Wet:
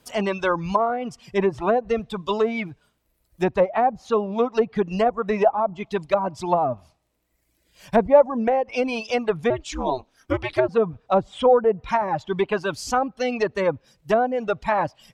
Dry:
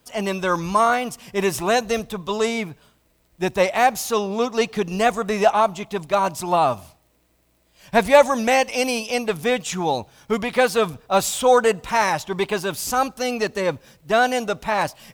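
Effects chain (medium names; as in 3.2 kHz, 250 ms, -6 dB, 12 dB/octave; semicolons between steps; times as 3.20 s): 9.50–10.69 s: ring modulator 130 Hz; reverb removal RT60 1.2 s; low-pass that closes with the level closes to 670 Hz, closed at -15.5 dBFS; trim +1.5 dB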